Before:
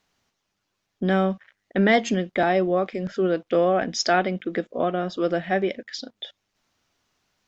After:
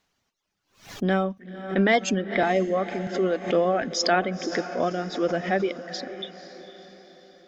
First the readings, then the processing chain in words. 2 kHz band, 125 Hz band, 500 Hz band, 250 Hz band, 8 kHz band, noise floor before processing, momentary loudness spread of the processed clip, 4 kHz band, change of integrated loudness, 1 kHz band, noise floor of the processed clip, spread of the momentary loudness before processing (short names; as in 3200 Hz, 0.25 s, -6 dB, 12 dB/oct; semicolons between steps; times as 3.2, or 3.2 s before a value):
-0.5 dB, -2.0 dB, -1.5 dB, -2.0 dB, n/a, -78 dBFS, 15 LU, 0.0 dB, -1.5 dB, -1.5 dB, -76 dBFS, 14 LU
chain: reverb removal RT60 0.78 s; diffused feedback echo 0.505 s, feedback 49%, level -13 dB; backwards sustainer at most 140 dB/s; gain -1 dB